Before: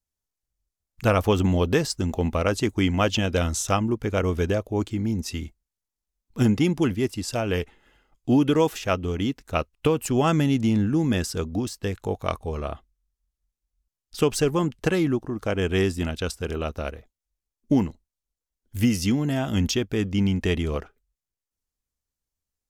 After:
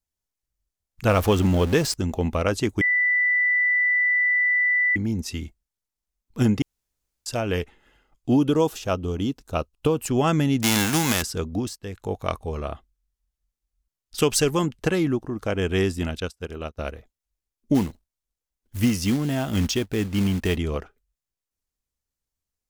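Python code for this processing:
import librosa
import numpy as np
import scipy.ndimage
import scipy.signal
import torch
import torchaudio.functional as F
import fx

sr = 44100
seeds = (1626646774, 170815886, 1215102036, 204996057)

y = fx.zero_step(x, sr, step_db=-28.5, at=(1.09, 1.94))
y = fx.peak_eq(y, sr, hz=2000.0, db=-10.0, octaves=0.73, at=(8.36, 9.98))
y = fx.envelope_flatten(y, sr, power=0.3, at=(10.62, 11.21), fade=0.02)
y = fx.high_shelf(y, sr, hz=2100.0, db=7.5, at=(14.18, 14.66))
y = fx.upward_expand(y, sr, threshold_db=-40.0, expansion=2.5, at=(16.2, 16.79))
y = fx.quant_float(y, sr, bits=2, at=(17.74, 20.55), fade=0.02)
y = fx.edit(y, sr, fx.bleep(start_s=2.81, length_s=2.15, hz=1980.0, db=-17.5),
    fx.room_tone_fill(start_s=6.62, length_s=0.64),
    fx.fade_in_from(start_s=11.76, length_s=0.4, floor_db=-12.5), tone=tone)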